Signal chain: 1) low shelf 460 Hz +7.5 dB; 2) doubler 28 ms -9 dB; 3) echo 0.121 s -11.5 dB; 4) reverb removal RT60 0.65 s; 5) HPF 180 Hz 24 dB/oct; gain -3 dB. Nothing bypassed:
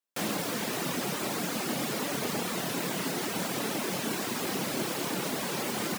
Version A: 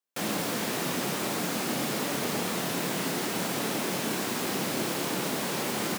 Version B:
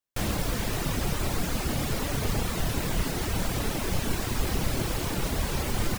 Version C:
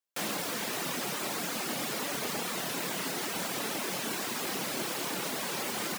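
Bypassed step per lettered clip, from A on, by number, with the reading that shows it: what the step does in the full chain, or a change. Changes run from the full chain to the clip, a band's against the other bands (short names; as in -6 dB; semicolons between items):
4, loudness change +2.0 LU; 5, 125 Hz band +10.5 dB; 1, 125 Hz band -5.5 dB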